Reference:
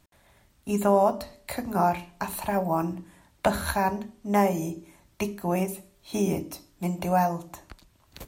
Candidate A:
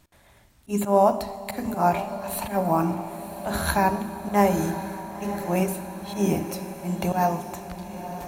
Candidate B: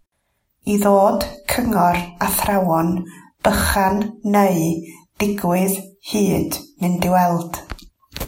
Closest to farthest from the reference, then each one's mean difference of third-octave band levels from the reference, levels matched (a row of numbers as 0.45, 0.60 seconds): B, A; 3.5, 6.5 decibels